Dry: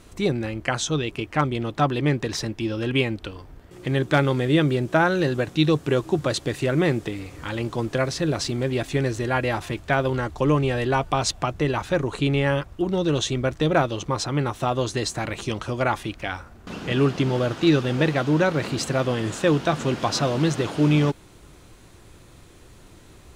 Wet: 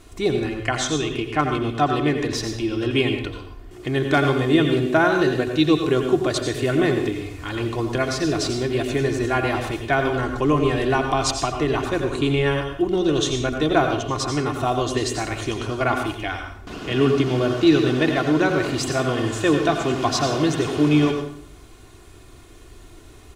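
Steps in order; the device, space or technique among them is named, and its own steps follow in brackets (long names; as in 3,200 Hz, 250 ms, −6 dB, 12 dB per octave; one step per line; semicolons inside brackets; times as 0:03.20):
microphone above a desk (comb filter 2.8 ms, depth 52%; convolution reverb RT60 0.60 s, pre-delay 79 ms, DRR 4.5 dB)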